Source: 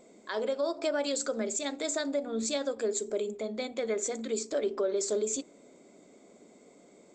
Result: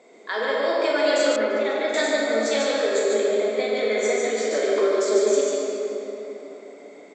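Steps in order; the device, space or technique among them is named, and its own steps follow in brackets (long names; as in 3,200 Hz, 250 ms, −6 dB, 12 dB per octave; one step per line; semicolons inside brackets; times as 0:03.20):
station announcement (band-pass filter 380–4,900 Hz; parametric band 1,900 Hz +7.5 dB 0.3 octaves; loudspeakers that aren't time-aligned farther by 13 metres −12 dB, 50 metres −3 dB; convolution reverb RT60 3.6 s, pre-delay 3 ms, DRR −4 dB)
0:01.36–0:01.94: high-frequency loss of the air 270 metres
level +5 dB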